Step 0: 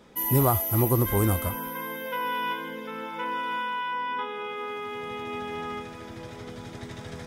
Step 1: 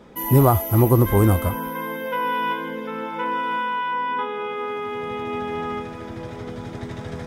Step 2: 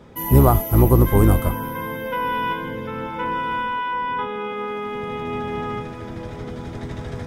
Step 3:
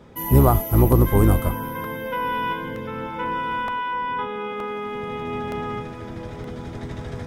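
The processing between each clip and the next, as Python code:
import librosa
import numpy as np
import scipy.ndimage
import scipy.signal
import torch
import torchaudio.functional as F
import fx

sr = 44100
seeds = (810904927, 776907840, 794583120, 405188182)

y1 = fx.high_shelf(x, sr, hz=2200.0, db=-9.0)
y1 = F.gain(torch.from_numpy(y1), 7.5).numpy()
y2 = fx.octave_divider(y1, sr, octaves=1, level_db=-1.0)
y3 = fx.buffer_crackle(y2, sr, first_s=0.92, period_s=0.92, block=64, kind='repeat')
y3 = F.gain(torch.from_numpy(y3), -1.5).numpy()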